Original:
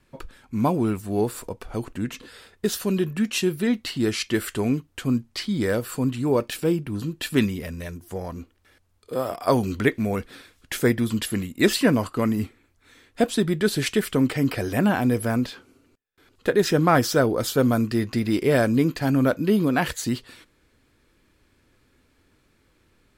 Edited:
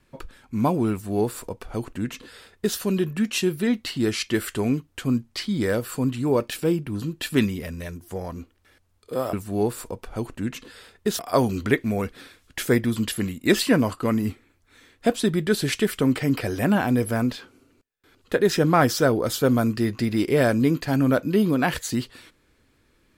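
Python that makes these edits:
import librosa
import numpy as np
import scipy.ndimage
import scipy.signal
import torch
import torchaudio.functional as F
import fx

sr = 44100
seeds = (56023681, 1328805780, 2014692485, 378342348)

y = fx.edit(x, sr, fx.duplicate(start_s=0.91, length_s=1.86, to_s=9.33), tone=tone)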